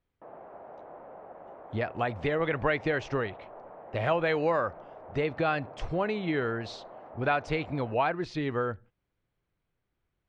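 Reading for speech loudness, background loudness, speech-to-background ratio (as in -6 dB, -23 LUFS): -30.5 LUFS, -47.5 LUFS, 17.0 dB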